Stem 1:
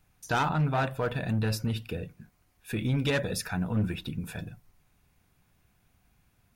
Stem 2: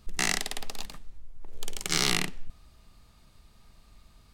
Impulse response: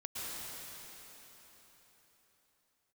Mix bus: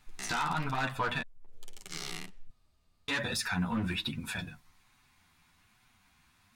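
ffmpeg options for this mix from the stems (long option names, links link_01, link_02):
-filter_complex "[0:a]equalizer=frequency=125:width_type=o:width=1:gain=-3,equalizer=frequency=250:width_type=o:width=1:gain=5,equalizer=frequency=500:width_type=o:width=1:gain=-7,equalizer=frequency=1000:width_type=o:width=1:gain=11,equalizer=frequency=2000:width_type=o:width=1:gain=7,equalizer=frequency=4000:width_type=o:width=1:gain=10,equalizer=frequency=8000:width_type=o:width=1:gain=7,alimiter=limit=-17.5dB:level=0:latency=1:release=33,asoftclip=type=tanh:threshold=-19.5dB,volume=-0.5dB,asplit=3[link_01][link_02][link_03];[link_01]atrim=end=1.22,asetpts=PTS-STARTPTS,afade=type=out:start_time=1.216:duration=0.004:curve=hsin[link_04];[link_02]atrim=start=1.22:end=3.08,asetpts=PTS-STARTPTS,volume=0[link_05];[link_03]atrim=start=3.08,asetpts=PTS-STARTPTS,afade=type=in:duration=0.004:curve=hsin[link_06];[link_04][link_05][link_06]concat=n=3:v=0:a=1[link_07];[1:a]volume=-11.5dB[link_08];[link_07][link_08]amix=inputs=2:normalize=0,flanger=delay=7.9:depth=4.8:regen=2:speed=1.2:shape=sinusoidal"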